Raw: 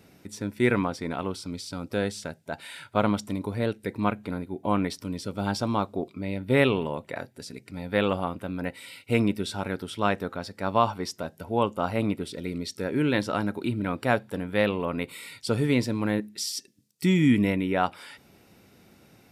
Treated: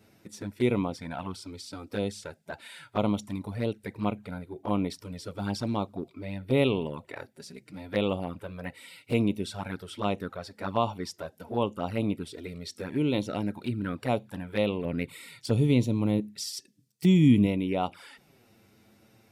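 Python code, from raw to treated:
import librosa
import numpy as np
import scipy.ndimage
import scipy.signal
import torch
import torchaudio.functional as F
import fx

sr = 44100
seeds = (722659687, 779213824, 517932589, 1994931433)

y = fx.peak_eq(x, sr, hz=120.0, db=5.5, octaves=1.7, at=(14.84, 17.47))
y = fx.env_flanger(y, sr, rest_ms=10.1, full_db=-22.0)
y = F.gain(torch.from_numpy(y), -1.5).numpy()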